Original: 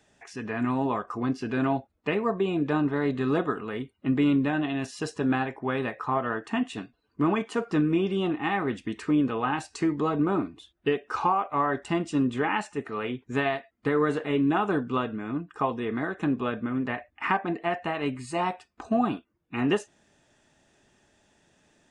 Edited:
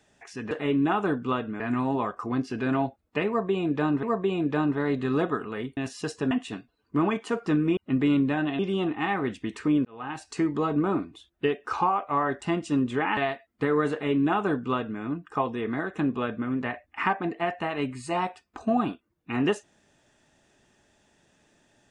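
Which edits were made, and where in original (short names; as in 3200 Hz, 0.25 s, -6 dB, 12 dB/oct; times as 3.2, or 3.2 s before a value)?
2.19–2.94 loop, 2 plays
3.93–4.75 move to 8.02
5.29–6.56 cut
9.28–9.81 fade in
12.6–13.41 cut
14.16–15.25 copy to 0.51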